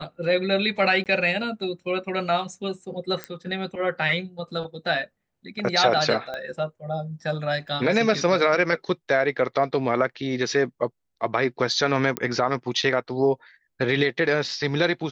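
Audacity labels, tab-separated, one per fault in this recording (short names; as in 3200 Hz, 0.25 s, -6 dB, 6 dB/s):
1.040000	1.060000	gap 18 ms
3.240000	3.240000	pop -15 dBFS
6.340000	6.340000	pop -20 dBFS
7.680000	7.680000	gap 2.5 ms
12.170000	12.170000	pop -9 dBFS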